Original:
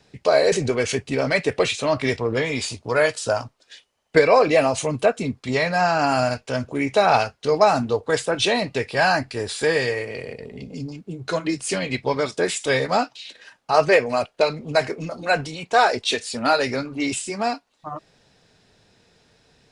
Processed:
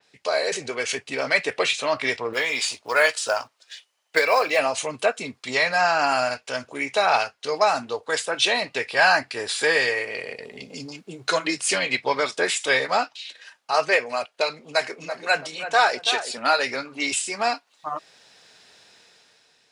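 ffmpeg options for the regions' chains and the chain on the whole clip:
ffmpeg -i in.wav -filter_complex "[0:a]asettb=1/sr,asplit=3[link_01][link_02][link_03];[link_01]atrim=end=2.334[link_04];[link_02]atrim=start=2.33:end=4.59,asetpts=PTS-STARTPTS,afade=type=in:duration=0.004:curve=qsin,afade=type=out:start_time=2.256:duration=0.004:curve=qsin,lowshelf=frequency=240:gain=-10,acrusher=bits=8:mode=log:mix=0:aa=0.000001[link_05];[link_03]atrim=start=4.586[link_06];[link_04][link_05]acrossfade=duration=0.004:curve1=hsin:curve2=qsin[link_07];[link_07][link_06]acrossfade=duration=0.004:curve1=qsin:curve2=hsin,asettb=1/sr,asplit=3[link_08][link_09][link_10];[link_08]atrim=end=14.604[link_11];[link_09]atrim=start=14.6:end=16.38,asetpts=PTS-STARTPTS,afade=type=in:duration=0.004:curve=qsin,afade=type=out:start_time=1.776:duration=0.004:curve=qsin,highpass=110,asplit=2[link_12][link_13];[link_13]adelay=332,lowpass=frequency=1400:poles=1,volume=-9dB,asplit=2[link_14][link_15];[link_15]adelay=332,lowpass=frequency=1400:poles=1,volume=0.31,asplit=2[link_16][link_17];[link_17]adelay=332,lowpass=frequency=1400:poles=1,volume=0.31,asplit=2[link_18][link_19];[link_19]adelay=332,lowpass=frequency=1400:poles=1,volume=0.31[link_20];[link_12][link_14][link_16][link_18][link_20]amix=inputs=5:normalize=0,atrim=end_sample=78498[link_21];[link_10]atrim=start=16.376[link_22];[link_11][link_21]acrossfade=duration=0.004:curve1=hsin:curve2=qsin[link_23];[link_23][link_22]acrossfade=duration=0.004:curve1=qsin:curve2=hsin,dynaudnorm=framelen=260:gausssize=7:maxgain=11.5dB,highpass=frequency=1300:poles=1,adynamicequalizer=threshold=0.0141:dfrequency=3900:dqfactor=0.7:tfrequency=3900:tqfactor=0.7:attack=5:release=100:ratio=0.375:range=3:mode=cutabove:tftype=highshelf" out.wav

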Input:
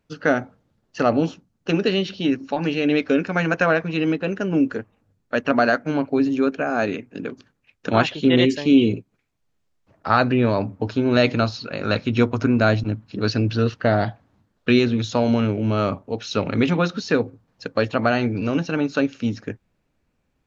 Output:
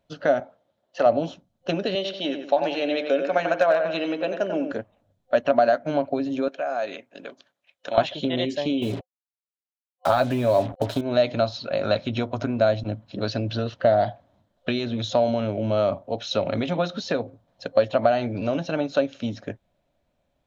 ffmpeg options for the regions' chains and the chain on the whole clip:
ffmpeg -i in.wav -filter_complex "[0:a]asettb=1/sr,asplit=3[link_01][link_02][link_03];[link_01]atrim=end=0.404[link_04];[link_02]atrim=start=0.4:end=1.06,asetpts=PTS-STARTPTS,afade=type=in:duration=0.004:curve=qsin,afade=type=out:start_time=0.656:duration=0.004:curve=qsin,highpass=70,bass=frequency=250:gain=-12,treble=frequency=4000:gain=-4[link_05];[link_03]atrim=start=1.056[link_06];[link_04][link_05]acrossfade=duration=0.004:curve1=hsin:curve2=qsin[link_07];[link_07][link_06]acrossfade=duration=0.004:curve1=qsin:curve2=hsin,asettb=1/sr,asplit=3[link_08][link_09][link_10];[link_08]atrim=end=1.954[link_11];[link_09]atrim=start=1.95:end=4.72,asetpts=PTS-STARTPTS,afade=type=in:duration=0.004:curve=qsin,afade=type=out:start_time=2.766:duration=0.004:curve=qsin,highpass=330,asplit=2[link_12][link_13];[link_13]adelay=92,lowpass=frequency=2900:poles=1,volume=-7.5dB,asplit=2[link_14][link_15];[link_15]adelay=92,lowpass=frequency=2900:poles=1,volume=0.4,asplit=2[link_16][link_17];[link_17]adelay=92,lowpass=frequency=2900:poles=1,volume=0.4,asplit=2[link_18][link_19];[link_19]adelay=92,lowpass=frequency=2900:poles=1,volume=0.4,asplit=2[link_20][link_21];[link_21]adelay=92,lowpass=frequency=2900:poles=1,volume=0.4[link_22];[link_12][link_14][link_16][link_18][link_20][link_22]amix=inputs=6:normalize=0,atrim=end_sample=122157,asoftclip=type=hard:threshold=-8.5dB[link_23];[link_10]atrim=start=4.716[link_24];[link_11][link_23]acrossfade=duration=0.004:curve1=hsin:curve2=qsin[link_25];[link_25][link_24]acrossfade=duration=0.004:curve1=qsin:curve2=hsin,asettb=1/sr,asplit=3[link_26][link_27][link_28];[link_26]atrim=end=6.484[link_29];[link_27]atrim=start=6.48:end=7.98,asetpts=PTS-STARTPTS,afade=type=in:duration=0.004:curve=qsin,afade=type=out:start_time=1.496:duration=0.004:curve=qsin,highpass=frequency=900:poles=1,acompressor=threshold=-27dB:ratio=3:attack=3.2:release=140:knee=1:detection=peak[link_30];[link_28]atrim=start=7.976[link_31];[link_29][link_30]acrossfade=duration=0.004:curve1=hsin:curve2=qsin[link_32];[link_32][link_31]acrossfade=duration=0.004:curve1=qsin:curve2=hsin,asettb=1/sr,asplit=3[link_33][link_34][link_35];[link_33]atrim=end=8.824[link_36];[link_34]atrim=start=8.82:end=11.01,asetpts=PTS-STARTPTS,afade=type=in:duration=0.004:curve=qsin,afade=type=out:start_time=2.186:duration=0.004:curve=qsin,aecho=1:1:7.3:0.36,atrim=end_sample=96579,acontrast=39,acrusher=bits=4:mix=0:aa=0.5[link_37];[link_35]atrim=start=11.006[link_38];[link_36][link_37]acrossfade=duration=0.004:curve1=hsin:curve2=qsin[link_39];[link_39][link_38]acrossfade=duration=0.004:curve1=qsin:curve2=hsin,acompressor=threshold=-19dB:ratio=6,superequalizer=8b=3.98:9b=1.58:13b=2,volume=-3.5dB" out.wav

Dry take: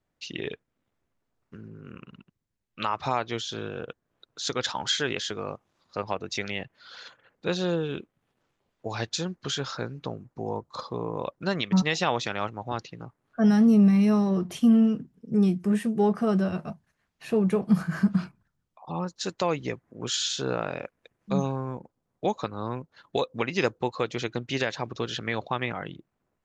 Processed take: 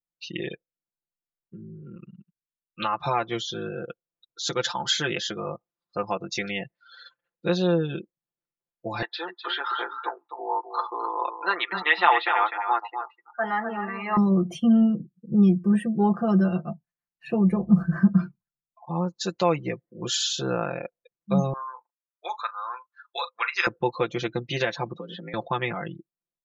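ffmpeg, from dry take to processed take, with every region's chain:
ffmpeg -i in.wav -filter_complex "[0:a]asettb=1/sr,asplit=3[link_01][link_02][link_03];[link_01]atrim=end=9.024[link_04];[link_02]atrim=start=9.02:end=14.17,asetpts=PTS-STARTPTS,afade=type=in:duration=0.004:curve=qsin,afade=type=out:start_time=5.146:duration=0.004:curve=qsin,highpass=frequency=400:width=0.5412,highpass=frequency=400:width=1.3066,equalizer=frequency=540:width_type=q:width=4:gain=-9,equalizer=frequency=900:width_type=q:width=4:gain=10,equalizer=frequency=1300:width_type=q:width=4:gain=8,equalizer=frequency=1900:width_type=q:width=4:gain=8,lowpass=frequency=3800:width=0.5412,lowpass=frequency=3800:width=1.3066,aecho=1:1:253:0.422,atrim=end_sample=227115[link_05];[link_03]atrim=start=14.166[link_06];[link_04][link_05]acrossfade=duration=0.004:curve1=hsin:curve2=qsin[link_07];[link_07][link_06]acrossfade=duration=0.004:curve1=qsin:curve2=hsin,asettb=1/sr,asplit=3[link_08][link_09][link_10];[link_08]atrim=end=17.444[link_11];[link_09]atrim=start=17.44:end=17.96,asetpts=PTS-STARTPTS,afade=type=in:duration=0.004:curve=qsin,afade=type=out:start_time=0.516:duration=0.004:curve=qsin,equalizer=frequency=1800:width_type=o:width=2:gain=-4,aeval=exprs='val(0)+0.00316*(sin(2*PI*60*n/s)+sin(2*PI*2*60*n/s)/2+sin(2*PI*3*60*n/s)/3+sin(2*PI*4*60*n/s)/4+sin(2*PI*5*60*n/s)/5)':channel_layout=same[link_12];[link_10]atrim=start=17.956[link_13];[link_11][link_12]acrossfade=duration=0.004:curve1=hsin:curve2=qsin[link_14];[link_14][link_13]acrossfade=duration=0.004:curve1=qsin:curve2=hsin,asettb=1/sr,asplit=3[link_15][link_16][link_17];[link_15]atrim=end=21.534[link_18];[link_16]atrim=start=21.53:end=23.67,asetpts=PTS-STARTPTS,afade=type=in:duration=0.004:curve=qsin,afade=type=out:start_time=2.136:duration=0.004:curve=qsin,highpass=frequency=1300:width_type=q:width=2.2,bandreject=frequency=3000:width=11,asplit=2[link_19][link_20];[link_20]adelay=39,volume=-12dB[link_21];[link_19][link_21]amix=inputs=2:normalize=0,atrim=end_sample=94374[link_22];[link_17]atrim=start=23.666[link_23];[link_18][link_22]acrossfade=duration=0.004:curve1=hsin:curve2=qsin[link_24];[link_24][link_23]acrossfade=duration=0.004:curve1=qsin:curve2=hsin,asettb=1/sr,asplit=3[link_25][link_26][link_27];[link_25]atrim=end=24.944[link_28];[link_26]atrim=start=24.94:end=25.34,asetpts=PTS-STARTPTS,afade=type=in:duration=0.004:curve=qsin,afade=type=out:start_time=0.396:duration=0.004:curve=qsin,highshelf=frequency=4000:gain=-9.5,acompressor=threshold=-35dB:ratio=6:attack=3.2:release=140:knee=1:detection=peak,afreqshift=56[link_29];[link_27]atrim=start=25.336[link_30];[link_28][link_29]acrossfade=duration=0.004:curve1=hsin:curve2=qsin[link_31];[link_31][link_30]acrossfade=duration=0.004:curve1=qsin:curve2=hsin,afftdn=noise_reduction=26:noise_floor=-41,aecho=1:1:5.8:0.84" out.wav

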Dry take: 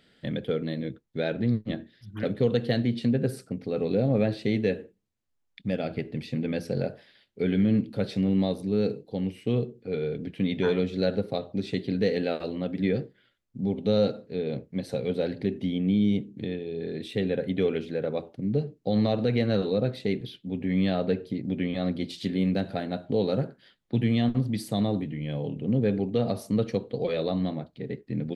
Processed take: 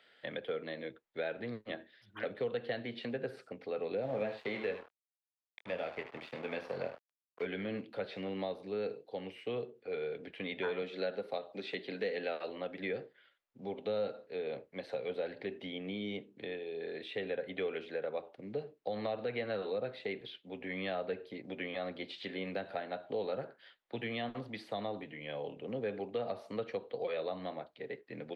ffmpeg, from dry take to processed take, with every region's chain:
ffmpeg -i in.wav -filter_complex "[0:a]asettb=1/sr,asplit=3[link_01][link_02][link_03];[link_01]atrim=end=4.024[link_04];[link_02]atrim=start=4.02:end=7.46,asetpts=PTS-STARTPTS,afade=type=in:duration=0.004:curve=qsin,afade=type=out:start_time=3.436:duration=0.004:curve=qsin,asplit=2[link_05][link_06];[link_06]adelay=23,volume=-7dB[link_07];[link_05][link_07]amix=inputs=2:normalize=0,atrim=end_sample=151704,aecho=1:1:76:0.299,atrim=end_sample=151704,aeval=exprs='sgn(val(0))*max(abs(val(0))-0.0075,0)':channel_layout=same[link_08];[link_03]atrim=start=7.456[link_09];[link_04][link_08]acrossfade=duration=0.004:curve1=hsin:curve2=qsin[link_10];[link_10][link_09]acrossfade=duration=0.004:curve1=qsin:curve2=hsin,asettb=1/sr,asplit=3[link_11][link_12][link_13];[link_11]atrim=end=10.824[link_14];[link_12]atrim=start=10.82:end=12.49,asetpts=PTS-STARTPTS,afade=type=in:duration=0.004:curve=qsin,afade=type=out:start_time=1.666:duration=0.004:curve=qsin,highpass=frequency=130:width=0.5412,highpass=frequency=130:width=1.3066,highshelf=frequency=4300:gain=7[link_15];[link_13]atrim=start=12.486[link_16];[link_14][link_15]acrossfade=duration=0.004:curve1=hsin:curve2=qsin[link_17];[link_17][link_16]acrossfade=duration=0.004:curve1=qsin:curve2=hsin,acrossover=split=4300[link_18][link_19];[link_19]acompressor=threshold=-60dB:ratio=4:attack=1:release=60[link_20];[link_18][link_20]amix=inputs=2:normalize=0,acrossover=split=480 3600:gain=0.0631 1 0.224[link_21][link_22][link_23];[link_21][link_22][link_23]amix=inputs=3:normalize=0,acrossover=split=250[link_24][link_25];[link_25]acompressor=threshold=-38dB:ratio=2.5[link_26];[link_24][link_26]amix=inputs=2:normalize=0,volume=1.5dB" out.wav

